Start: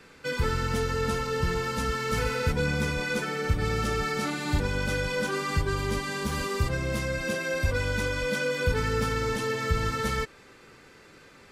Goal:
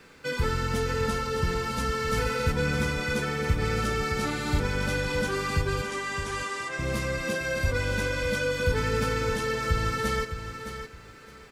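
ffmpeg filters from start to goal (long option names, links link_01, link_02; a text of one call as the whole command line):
ffmpeg -i in.wav -filter_complex "[0:a]acrusher=bits=11:mix=0:aa=0.000001,asettb=1/sr,asplit=3[link_01][link_02][link_03];[link_01]atrim=end=5.824[link_04];[link_02]atrim=start=5.82:end=6.79,asetpts=PTS-STARTPTS,afade=type=in:duration=0.004:curve=qsin,afade=type=out:start_time=0.966:duration=0.004:curve=qsin,highpass=470,equalizer=frequency=520:width_type=q:width=4:gain=-5,equalizer=frequency=1800:width_type=q:width=4:gain=3,equalizer=frequency=4300:width_type=q:width=4:gain=-6,lowpass=frequency=9500:width=0.5412,lowpass=frequency=9500:width=1.3066[link_05];[link_03]atrim=start=6.786[link_06];[link_04][link_05]acrossfade=duration=0.004:curve1=hsin:curve2=qsin[link_07];[link_07][link_06]acrossfade=duration=0.004:curve1=qsin:curve2=hsin,aecho=1:1:614|1228|1842:0.335|0.0804|0.0193" out.wav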